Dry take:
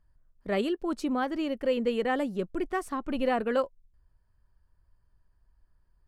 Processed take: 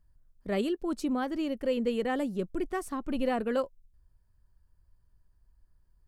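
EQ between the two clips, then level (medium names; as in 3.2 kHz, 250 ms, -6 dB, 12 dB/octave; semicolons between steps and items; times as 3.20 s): bass shelf 480 Hz +7.5 dB; treble shelf 4.3 kHz +9.5 dB; -6.0 dB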